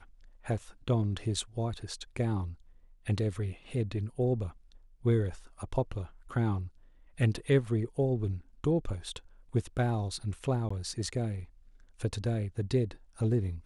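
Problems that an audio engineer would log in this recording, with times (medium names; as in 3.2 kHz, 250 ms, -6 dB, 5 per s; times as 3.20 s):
10.69–10.71 s: dropout 15 ms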